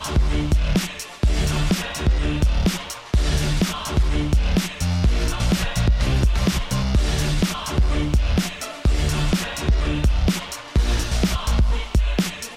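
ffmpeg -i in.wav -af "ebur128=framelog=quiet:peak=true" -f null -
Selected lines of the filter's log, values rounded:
Integrated loudness:
  I:         -22.1 LUFS
  Threshold: -32.1 LUFS
Loudness range:
  LRA:         1.0 LU
  Threshold: -42.0 LUFS
  LRA low:   -22.5 LUFS
  LRA high:  -21.5 LUFS
True peak:
  Peak:       -8.9 dBFS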